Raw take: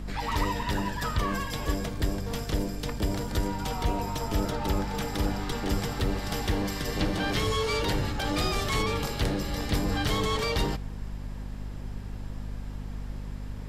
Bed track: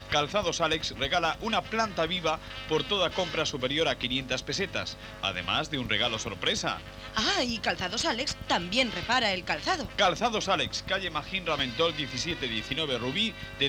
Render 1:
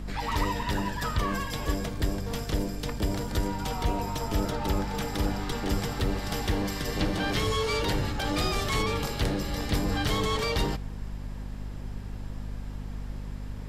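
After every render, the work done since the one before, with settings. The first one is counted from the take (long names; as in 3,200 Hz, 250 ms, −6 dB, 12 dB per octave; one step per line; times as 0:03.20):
no processing that can be heard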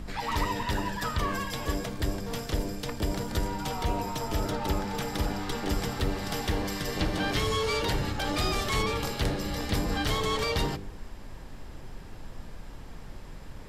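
hum removal 50 Hz, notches 10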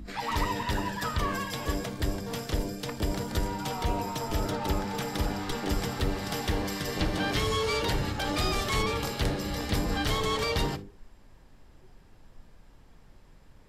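noise reduction from a noise print 12 dB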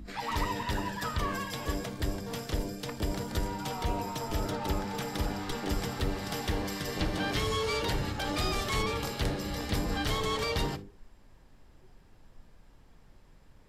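level −2.5 dB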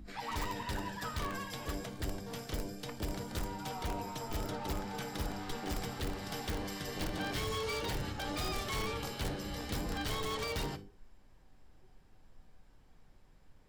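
tuned comb filter 760 Hz, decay 0.3 s, mix 70%
in parallel at −3.5 dB: wrap-around overflow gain 32.5 dB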